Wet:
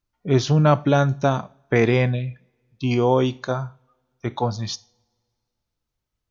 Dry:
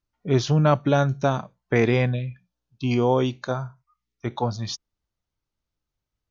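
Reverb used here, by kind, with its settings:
coupled-rooms reverb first 0.41 s, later 2.1 s, from −26 dB, DRR 16.5 dB
level +2 dB

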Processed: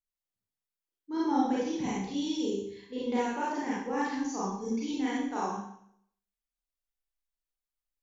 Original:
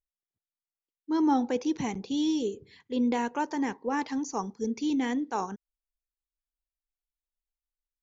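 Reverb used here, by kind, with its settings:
four-comb reverb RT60 0.67 s, combs from 31 ms, DRR −7.5 dB
level −9 dB

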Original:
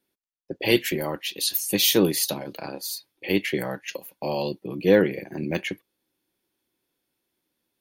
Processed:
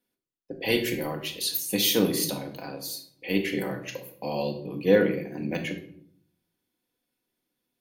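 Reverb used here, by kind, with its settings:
rectangular room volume 1,000 cubic metres, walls furnished, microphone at 1.9 metres
level −5 dB

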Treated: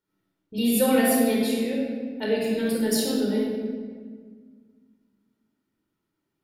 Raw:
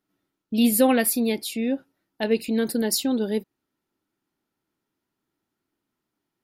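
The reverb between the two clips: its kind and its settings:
rectangular room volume 2,200 cubic metres, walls mixed, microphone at 4.6 metres
level −7.5 dB

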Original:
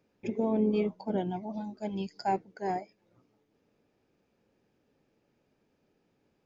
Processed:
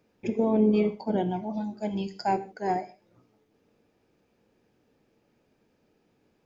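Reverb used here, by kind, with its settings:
reverb whose tail is shaped and stops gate 180 ms falling, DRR 10.5 dB
level +4 dB

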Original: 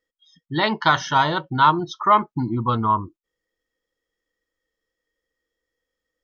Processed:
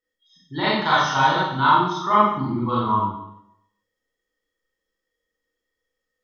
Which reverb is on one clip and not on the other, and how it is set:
four-comb reverb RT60 0.76 s, combs from 30 ms, DRR −8 dB
level −8 dB

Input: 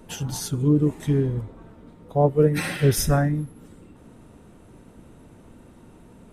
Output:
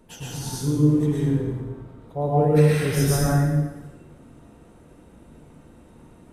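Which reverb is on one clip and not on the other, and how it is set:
dense smooth reverb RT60 1.2 s, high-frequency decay 0.8×, pre-delay 95 ms, DRR −6.5 dB
level −7.5 dB

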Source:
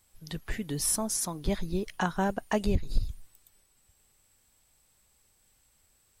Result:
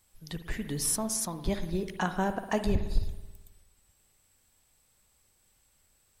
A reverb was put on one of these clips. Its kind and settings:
spring reverb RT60 1.2 s, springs 54 ms, chirp 35 ms, DRR 9 dB
level −1 dB

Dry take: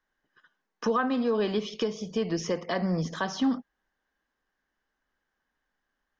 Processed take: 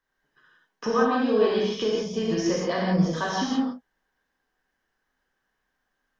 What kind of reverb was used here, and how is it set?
reverb whose tail is shaped and stops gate 210 ms flat, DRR −4.5 dB
level −1.5 dB

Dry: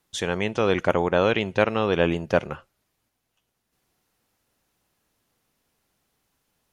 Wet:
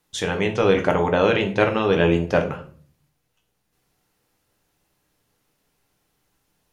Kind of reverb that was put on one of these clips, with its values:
rectangular room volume 38 cubic metres, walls mixed, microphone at 0.39 metres
level +1 dB

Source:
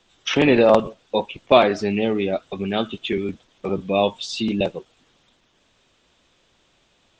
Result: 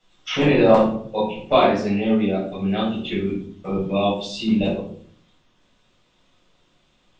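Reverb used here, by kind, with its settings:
rectangular room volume 680 cubic metres, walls furnished, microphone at 7 metres
level −11 dB

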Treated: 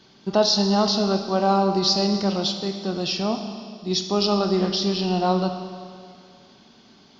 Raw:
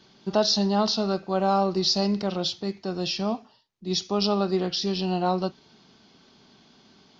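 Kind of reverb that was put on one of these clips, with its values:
four-comb reverb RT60 2.2 s, combs from 27 ms, DRR 6.5 dB
level +2.5 dB

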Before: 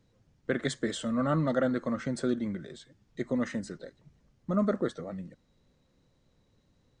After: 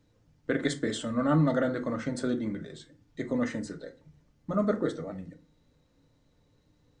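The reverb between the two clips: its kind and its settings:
feedback delay network reverb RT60 0.35 s, low-frequency decay 1.25×, high-frequency decay 0.6×, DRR 5 dB

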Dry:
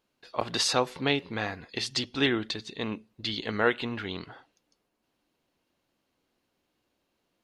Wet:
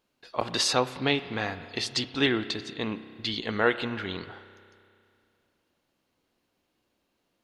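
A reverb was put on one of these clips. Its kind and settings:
spring reverb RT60 2.4 s, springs 31 ms, chirp 35 ms, DRR 12.5 dB
level +1 dB

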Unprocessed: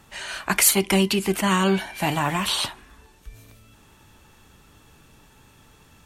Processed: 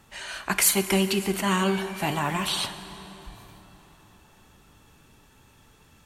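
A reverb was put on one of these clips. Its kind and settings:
dense smooth reverb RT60 4.3 s, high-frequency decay 0.65×, DRR 10.5 dB
level −3.5 dB

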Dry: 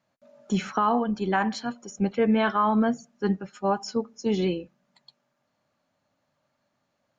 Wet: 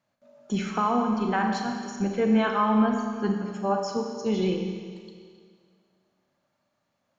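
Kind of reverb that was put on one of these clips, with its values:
four-comb reverb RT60 2 s, combs from 29 ms, DRR 2.5 dB
level −2.5 dB

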